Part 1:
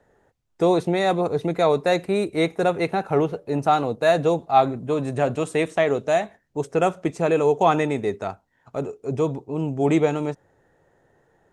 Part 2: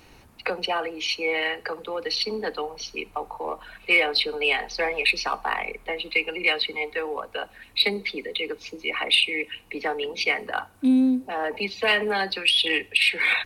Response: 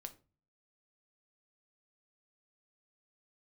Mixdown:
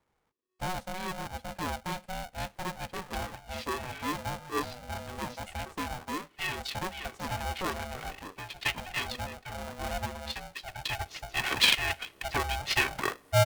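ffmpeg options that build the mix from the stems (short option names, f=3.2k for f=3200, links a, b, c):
-filter_complex "[0:a]volume=-15.5dB,asplit=2[a][b];[1:a]adelay=2500,volume=-3dB[c];[b]apad=whole_len=703415[d];[c][d]sidechaincompress=threshold=-49dB:ratio=12:attack=37:release=730[e];[a][e]amix=inputs=2:normalize=0,aeval=exprs='val(0)*sgn(sin(2*PI*370*n/s))':c=same"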